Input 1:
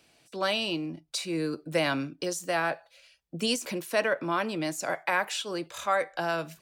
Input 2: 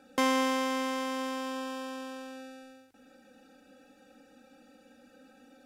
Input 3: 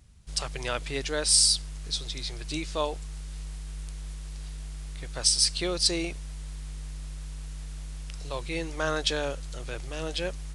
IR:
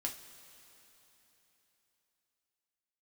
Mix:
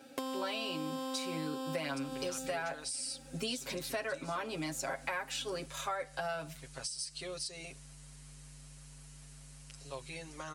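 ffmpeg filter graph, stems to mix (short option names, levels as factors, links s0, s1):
-filter_complex "[0:a]volume=0.562[s0];[1:a]volume=0.841[s1];[2:a]equalizer=f=8400:w=1.5:g=3,bandreject=f=3500:w=17,acompressor=threshold=0.0398:ratio=4,adelay=1600,volume=0.251[s2];[s1][s2]amix=inputs=2:normalize=0,highshelf=f=8700:g=7,acompressor=threshold=0.0141:ratio=6,volume=1[s3];[s0][s3]amix=inputs=2:normalize=0,highpass=f=82:p=1,aecho=1:1:7.4:1,acompressor=threshold=0.02:ratio=6"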